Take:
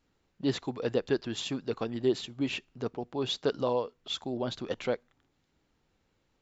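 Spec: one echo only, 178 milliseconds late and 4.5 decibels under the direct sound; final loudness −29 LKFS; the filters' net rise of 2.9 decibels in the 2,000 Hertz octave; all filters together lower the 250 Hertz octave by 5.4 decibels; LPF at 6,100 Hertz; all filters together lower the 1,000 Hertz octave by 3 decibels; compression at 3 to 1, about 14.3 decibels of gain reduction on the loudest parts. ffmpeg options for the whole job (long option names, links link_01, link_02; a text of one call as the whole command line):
ffmpeg -i in.wav -af "lowpass=6100,equalizer=frequency=250:width_type=o:gain=-6.5,equalizer=frequency=1000:width_type=o:gain=-4.5,equalizer=frequency=2000:width_type=o:gain=5.5,acompressor=threshold=-45dB:ratio=3,aecho=1:1:178:0.596,volume=15.5dB" out.wav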